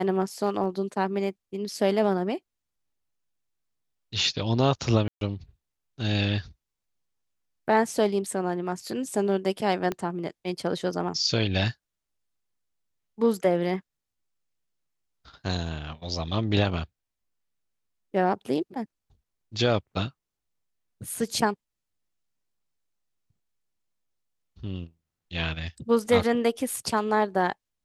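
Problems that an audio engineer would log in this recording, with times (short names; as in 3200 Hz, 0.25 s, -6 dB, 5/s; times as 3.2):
0.64 gap 2.3 ms
5.08–5.21 gap 0.132 s
9.92 pop -16 dBFS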